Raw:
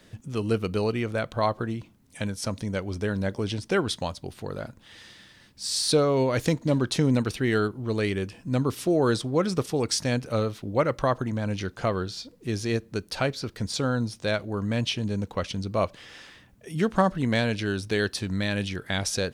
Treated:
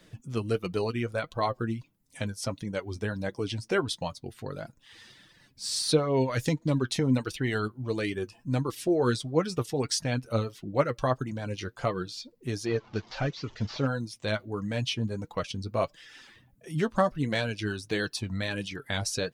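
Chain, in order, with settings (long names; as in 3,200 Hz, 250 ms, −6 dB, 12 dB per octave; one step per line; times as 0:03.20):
0:12.66–0:13.87: linear delta modulator 32 kbit/s, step −37.5 dBFS
reverb reduction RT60 0.66 s
flanger 1.5 Hz, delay 5.7 ms, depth 3.4 ms, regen +36%
level +1.5 dB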